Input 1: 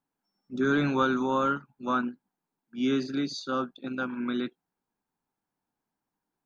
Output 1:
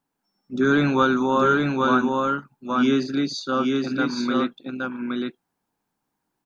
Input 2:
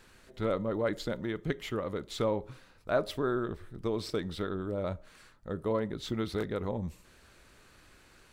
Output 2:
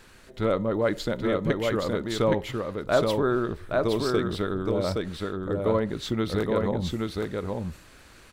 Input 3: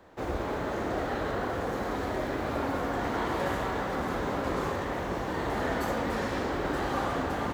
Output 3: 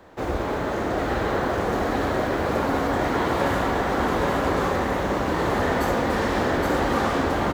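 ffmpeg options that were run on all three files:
-af "aecho=1:1:820:0.708,volume=6dB"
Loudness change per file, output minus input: +6.5, +7.0, +7.5 LU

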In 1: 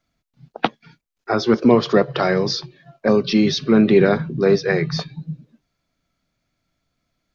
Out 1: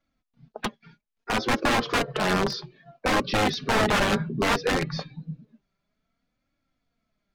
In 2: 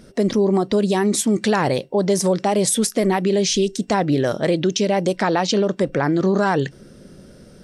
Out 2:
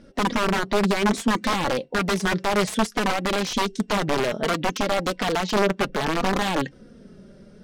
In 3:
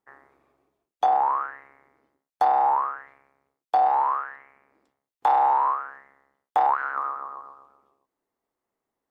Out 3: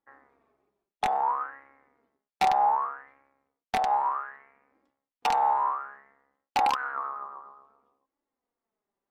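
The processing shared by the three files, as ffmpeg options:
-af "aeval=exprs='(mod(3.98*val(0)+1,2)-1)/3.98':c=same,flanger=delay=3.5:depth=1.7:regen=35:speed=0.61:shape=triangular,aemphasis=mode=reproduction:type=50fm"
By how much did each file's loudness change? -7.0, -4.5, -4.0 LU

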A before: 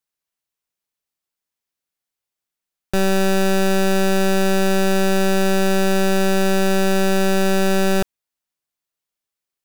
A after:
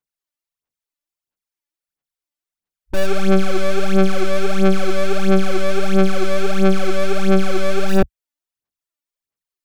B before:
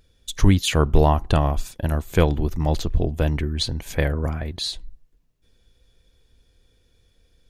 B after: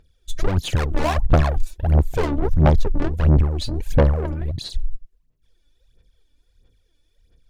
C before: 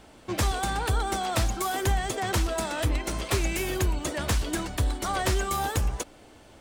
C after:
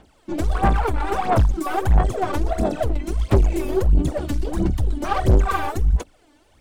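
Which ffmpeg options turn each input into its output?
-af "afwtdn=0.0631,aeval=exprs='(tanh(31.6*val(0)+0.3)-tanh(0.3))/31.6':c=same,aphaser=in_gain=1:out_gain=1:delay=3.5:decay=0.72:speed=1.5:type=sinusoidal,volume=9dB"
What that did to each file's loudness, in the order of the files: -1.0, +1.5, +6.0 LU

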